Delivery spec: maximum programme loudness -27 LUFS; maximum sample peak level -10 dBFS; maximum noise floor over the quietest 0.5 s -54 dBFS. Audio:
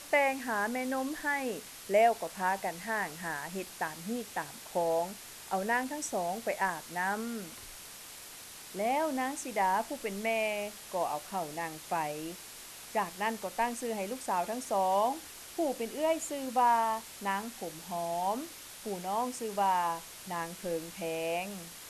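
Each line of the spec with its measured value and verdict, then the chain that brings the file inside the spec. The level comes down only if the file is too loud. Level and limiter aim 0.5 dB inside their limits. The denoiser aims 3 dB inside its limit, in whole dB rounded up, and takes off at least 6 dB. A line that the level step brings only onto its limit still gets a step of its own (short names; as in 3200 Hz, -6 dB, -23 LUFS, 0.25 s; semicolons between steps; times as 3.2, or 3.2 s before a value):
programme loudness -33.0 LUFS: OK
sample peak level -14.0 dBFS: OK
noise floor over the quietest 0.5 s -48 dBFS: fail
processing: denoiser 9 dB, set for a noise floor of -48 dBFS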